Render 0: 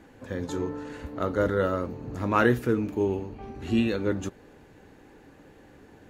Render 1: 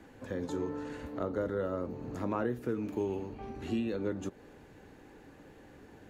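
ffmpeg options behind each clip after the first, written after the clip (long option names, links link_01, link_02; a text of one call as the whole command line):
ffmpeg -i in.wav -filter_complex "[0:a]acrossover=split=170|950[link_01][link_02][link_03];[link_01]acompressor=threshold=-44dB:ratio=4[link_04];[link_02]acompressor=threshold=-29dB:ratio=4[link_05];[link_03]acompressor=threshold=-47dB:ratio=4[link_06];[link_04][link_05][link_06]amix=inputs=3:normalize=0,volume=-2dB" out.wav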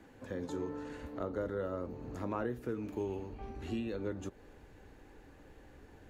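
ffmpeg -i in.wav -af "asubboost=boost=4:cutoff=76,volume=-3dB" out.wav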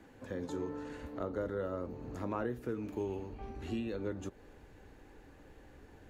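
ffmpeg -i in.wav -af anull out.wav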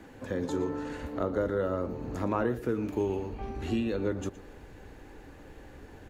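ffmpeg -i in.wav -af "aecho=1:1:117:0.15,volume=7.5dB" out.wav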